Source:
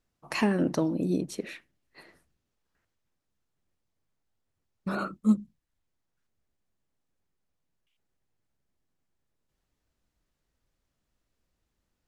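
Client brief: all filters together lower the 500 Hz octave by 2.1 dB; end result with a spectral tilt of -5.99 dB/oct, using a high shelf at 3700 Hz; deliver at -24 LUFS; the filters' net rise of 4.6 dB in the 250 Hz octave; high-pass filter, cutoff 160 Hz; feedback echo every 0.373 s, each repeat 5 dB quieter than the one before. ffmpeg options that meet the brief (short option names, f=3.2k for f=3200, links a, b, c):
-af "highpass=160,equalizer=f=250:t=o:g=9,equalizer=f=500:t=o:g=-8,highshelf=f=3.7k:g=7,aecho=1:1:373|746|1119|1492|1865|2238|2611:0.562|0.315|0.176|0.0988|0.0553|0.031|0.0173,volume=2.5dB"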